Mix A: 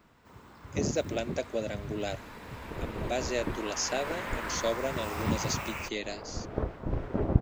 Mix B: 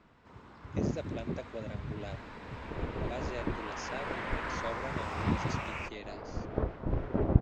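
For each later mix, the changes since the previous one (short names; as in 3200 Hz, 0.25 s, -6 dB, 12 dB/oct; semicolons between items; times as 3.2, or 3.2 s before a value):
speech -9.0 dB; master: add air absorption 110 m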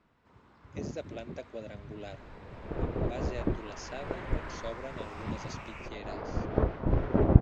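first sound -7.0 dB; second sound +5.0 dB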